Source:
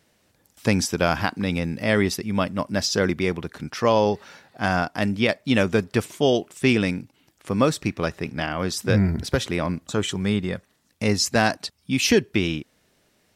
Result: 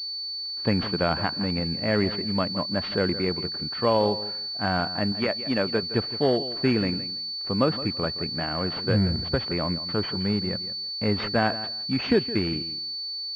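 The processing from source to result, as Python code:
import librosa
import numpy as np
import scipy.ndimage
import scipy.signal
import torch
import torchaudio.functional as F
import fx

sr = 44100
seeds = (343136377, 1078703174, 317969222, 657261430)

p1 = fx.highpass(x, sr, hz=250.0, slope=6, at=(5.12, 5.83))
p2 = p1 + fx.echo_feedback(p1, sr, ms=166, feedback_pct=20, wet_db=-14, dry=0)
p3 = fx.pwm(p2, sr, carrier_hz=4500.0)
y = F.gain(torch.from_numpy(p3), -3.0).numpy()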